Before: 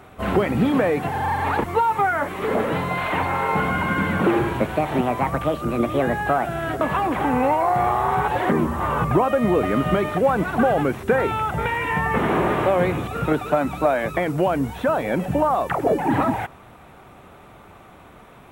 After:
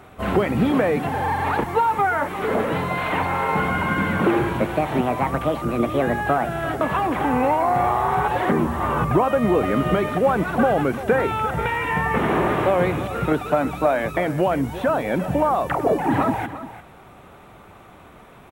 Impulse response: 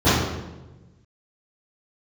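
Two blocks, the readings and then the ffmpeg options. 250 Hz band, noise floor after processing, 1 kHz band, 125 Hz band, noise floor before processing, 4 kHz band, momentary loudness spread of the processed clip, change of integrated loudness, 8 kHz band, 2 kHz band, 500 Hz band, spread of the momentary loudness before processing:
0.0 dB, −46 dBFS, 0.0 dB, 0.0 dB, −46 dBFS, 0.0 dB, 4 LU, 0.0 dB, 0.0 dB, 0.0 dB, 0.0 dB, 4 LU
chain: -af "aecho=1:1:346:0.211"

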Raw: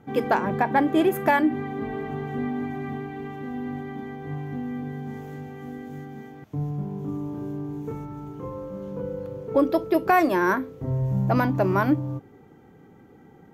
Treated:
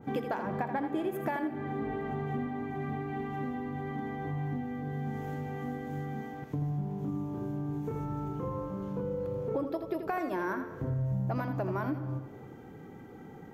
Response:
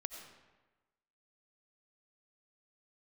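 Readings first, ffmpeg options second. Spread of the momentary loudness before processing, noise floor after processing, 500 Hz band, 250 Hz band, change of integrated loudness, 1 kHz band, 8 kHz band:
16 LU, −48 dBFS, −9.0 dB, −8.5 dB, −9.0 dB, −10.5 dB, can't be measured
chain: -filter_complex "[0:a]acompressor=threshold=-34dB:ratio=6,asplit=2[link_01][link_02];[1:a]atrim=start_sample=2205,adelay=83[link_03];[link_02][link_03]afir=irnorm=-1:irlink=0,volume=-5.5dB[link_04];[link_01][link_04]amix=inputs=2:normalize=0,adynamicequalizer=threshold=0.00282:dfrequency=2000:dqfactor=0.7:tfrequency=2000:tqfactor=0.7:attack=5:release=100:ratio=0.375:range=2:mode=cutabove:tftype=highshelf,volume=2.5dB"

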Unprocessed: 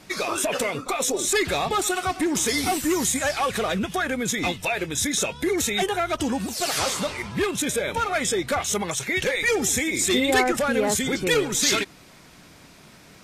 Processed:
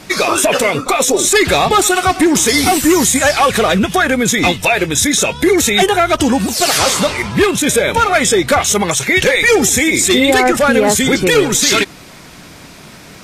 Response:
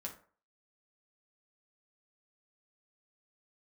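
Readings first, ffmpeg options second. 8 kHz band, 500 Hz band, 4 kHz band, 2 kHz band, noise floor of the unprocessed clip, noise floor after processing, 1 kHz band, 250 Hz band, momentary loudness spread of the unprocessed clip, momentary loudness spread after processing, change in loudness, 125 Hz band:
+10.5 dB, +12.0 dB, +11.0 dB, +11.5 dB, −49 dBFS, −37 dBFS, +12.0 dB, +12.0 dB, 5 LU, 3 LU, +11.5 dB, +12.0 dB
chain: -af "alimiter=level_in=13.5dB:limit=-1dB:release=50:level=0:latency=1,volume=-1dB"

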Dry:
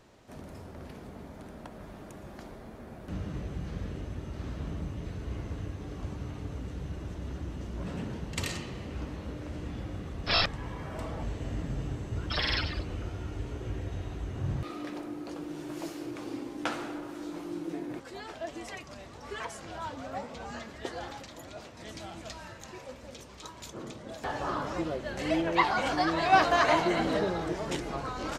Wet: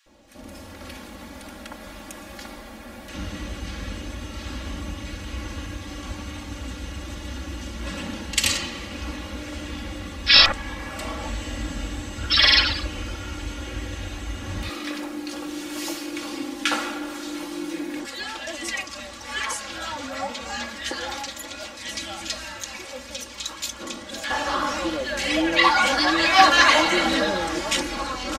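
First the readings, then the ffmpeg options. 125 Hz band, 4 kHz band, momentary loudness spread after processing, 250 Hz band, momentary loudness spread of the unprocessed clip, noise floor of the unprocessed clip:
+0.5 dB, +15.5 dB, 19 LU, +5.5 dB, 19 LU, −48 dBFS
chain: -filter_complex "[0:a]aecho=1:1:3.6:0.89,acrossover=split=330|1200[link_01][link_02][link_03];[link_03]dynaudnorm=framelen=210:gausssize=5:maxgain=12.5dB[link_04];[link_01][link_02][link_04]amix=inputs=3:normalize=0,acrossover=split=1500[link_05][link_06];[link_05]adelay=60[link_07];[link_07][link_06]amix=inputs=2:normalize=0,volume=1.5dB"

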